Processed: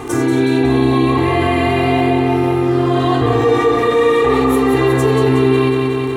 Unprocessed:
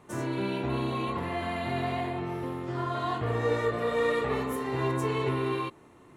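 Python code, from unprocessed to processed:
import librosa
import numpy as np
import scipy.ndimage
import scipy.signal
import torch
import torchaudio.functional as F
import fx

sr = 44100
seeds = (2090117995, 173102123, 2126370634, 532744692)

p1 = fx.peak_eq(x, sr, hz=260.0, db=9.0, octaves=0.4)
p2 = p1 + 0.92 * np.pad(p1, (int(2.5 * sr / 1000.0), 0))[:len(p1)]
p3 = fx.dmg_crackle(p2, sr, seeds[0], per_s=29.0, level_db=-44.0)
p4 = p3 + fx.echo_feedback(p3, sr, ms=183, feedback_pct=60, wet_db=-6, dry=0)
p5 = fx.env_flatten(p4, sr, amount_pct=50)
y = F.gain(torch.from_numpy(p5), 7.5).numpy()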